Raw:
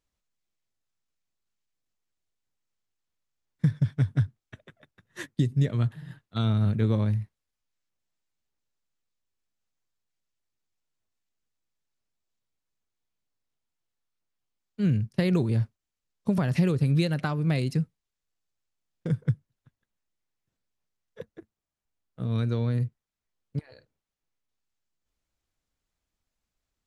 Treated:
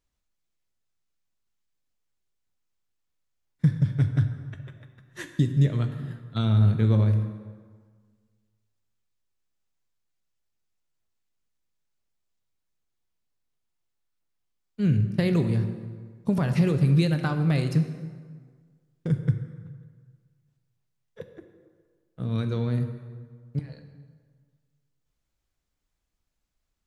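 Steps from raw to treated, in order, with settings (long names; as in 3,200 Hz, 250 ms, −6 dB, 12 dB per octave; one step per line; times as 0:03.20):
low-shelf EQ 93 Hz +5 dB
dense smooth reverb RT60 1.7 s, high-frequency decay 0.65×, DRR 7 dB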